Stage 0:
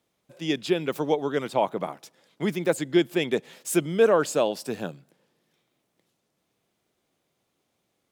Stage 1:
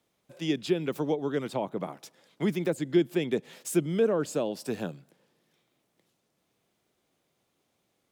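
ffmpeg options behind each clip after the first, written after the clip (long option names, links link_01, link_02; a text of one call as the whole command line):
ffmpeg -i in.wav -filter_complex "[0:a]acrossover=split=390[link_01][link_02];[link_02]acompressor=threshold=-35dB:ratio=3[link_03];[link_01][link_03]amix=inputs=2:normalize=0" out.wav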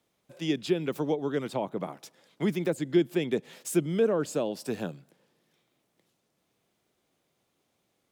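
ffmpeg -i in.wav -af anull out.wav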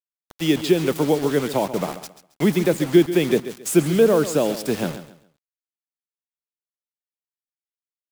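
ffmpeg -i in.wav -af "acrusher=bits=6:mix=0:aa=0.000001,aecho=1:1:136|272|408:0.224|0.0604|0.0163,volume=9dB" out.wav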